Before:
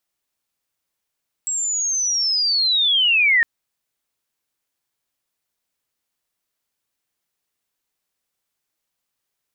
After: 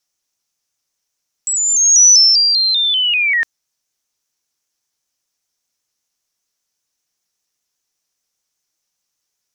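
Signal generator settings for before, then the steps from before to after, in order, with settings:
glide linear 7,700 Hz → 1,800 Hz −20.5 dBFS → −12 dBFS 1.96 s
parametric band 5,900 Hz +13.5 dB 0.59 octaves
pitch modulation by a square or saw wave saw up 5.1 Hz, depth 100 cents

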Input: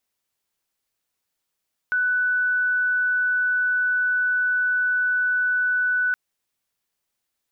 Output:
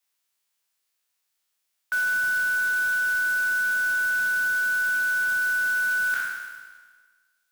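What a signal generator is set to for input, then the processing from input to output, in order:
tone sine 1,490 Hz −18.5 dBFS 4.22 s
peak hold with a decay on every bin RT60 1.49 s
high-pass filter 1,300 Hz 6 dB per octave
noise that follows the level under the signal 15 dB

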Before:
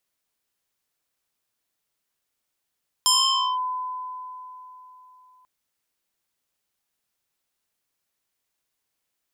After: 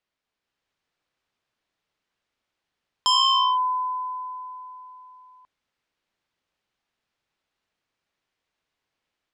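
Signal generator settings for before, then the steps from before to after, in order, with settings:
two-operator FM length 2.39 s, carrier 1,010 Hz, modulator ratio 2.06, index 4, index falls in 0.52 s linear, decay 3.61 s, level −14.5 dB
low-pass filter 3,700 Hz 12 dB per octave
automatic gain control gain up to 4 dB

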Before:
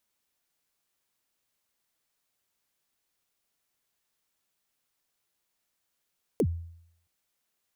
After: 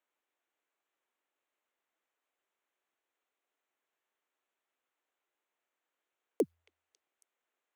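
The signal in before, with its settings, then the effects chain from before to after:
synth kick length 0.67 s, from 530 Hz, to 84 Hz, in 63 ms, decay 0.70 s, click on, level −19 dB
adaptive Wiener filter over 9 samples
high-pass filter 300 Hz 24 dB per octave
echo through a band-pass that steps 274 ms, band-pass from 2,800 Hz, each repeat 0.7 octaves, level −11 dB

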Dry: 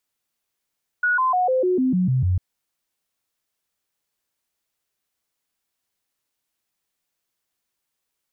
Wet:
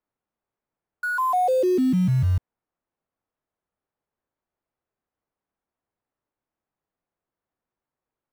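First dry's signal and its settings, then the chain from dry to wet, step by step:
stepped sweep 1,460 Hz down, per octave 2, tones 9, 0.15 s, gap 0.00 s −16.5 dBFS
low-pass filter 1,100 Hz 12 dB per octave
in parallel at −11.5 dB: wrap-around overflow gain 31 dB

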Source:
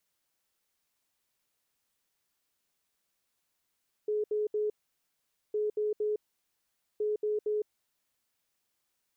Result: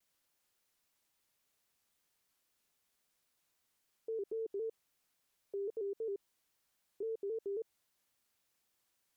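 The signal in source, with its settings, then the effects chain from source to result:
beeps in groups sine 423 Hz, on 0.16 s, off 0.07 s, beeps 3, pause 0.84 s, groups 3, −27 dBFS
brickwall limiter −35 dBFS
pitch modulation by a square or saw wave square 3.7 Hz, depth 100 cents

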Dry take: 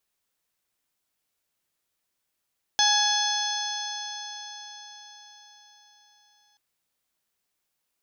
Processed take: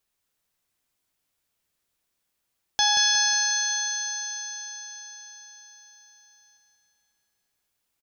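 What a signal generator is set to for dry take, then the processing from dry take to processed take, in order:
stiff-string partials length 3.78 s, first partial 830 Hz, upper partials −2.5/−16/2/−4/−1.5/−0.5 dB, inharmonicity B 0.0027, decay 4.97 s, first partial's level −24 dB
low-shelf EQ 130 Hz +6 dB
repeating echo 181 ms, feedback 60%, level −6 dB

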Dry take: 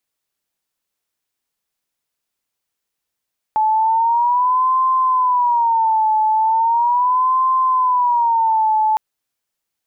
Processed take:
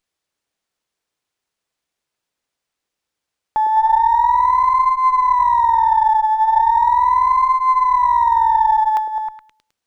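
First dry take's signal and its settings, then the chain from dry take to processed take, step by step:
siren wail 866–1,040 Hz 0.38 per second sine −12.5 dBFS 5.41 s
on a send: echo through a band-pass that steps 105 ms, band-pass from 410 Hz, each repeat 0.7 octaves, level −1 dB
on the sum: windowed peak hold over 3 samples

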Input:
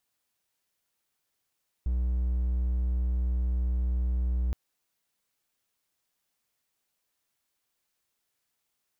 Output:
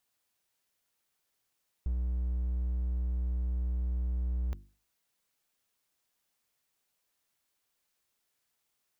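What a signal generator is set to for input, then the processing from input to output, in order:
tone triangle 61.5 Hz −22.5 dBFS 2.67 s
mains-hum notches 50/100/150/200/250/300/350 Hz
downward compressor, threshold −29 dBFS

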